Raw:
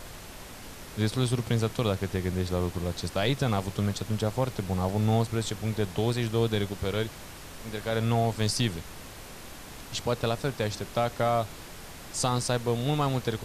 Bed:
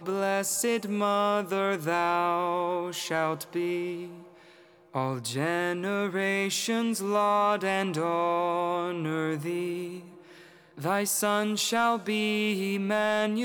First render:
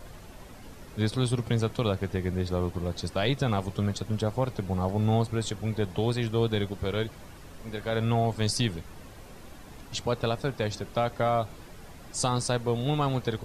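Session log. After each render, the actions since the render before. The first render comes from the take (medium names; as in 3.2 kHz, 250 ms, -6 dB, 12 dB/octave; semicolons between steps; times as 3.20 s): noise reduction 9 dB, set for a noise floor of -44 dBFS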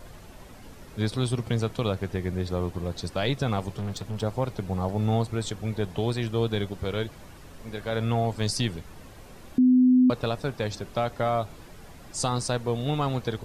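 3.78–4.23 s: hard clipper -28 dBFS; 9.58–10.10 s: bleep 253 Hz -14.5 dBFS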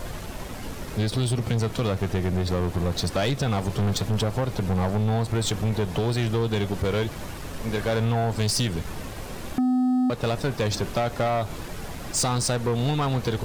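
compression 16:1, threshold -27 dBFS, peak gain reduction 11 dB; waveshaping leveller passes 3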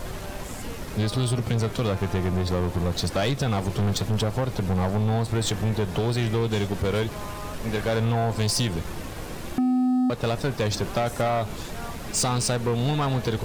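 add bed -15.5 dB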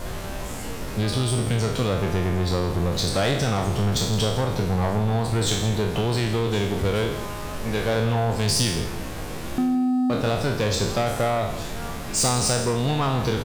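spectral sustain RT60 0.73 s; delay 165 ms -13.5 dB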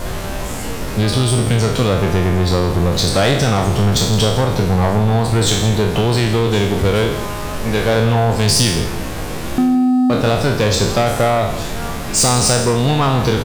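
trim +8 dB; peak limiter -2 dBFS, peak gain reduction 1.5 dB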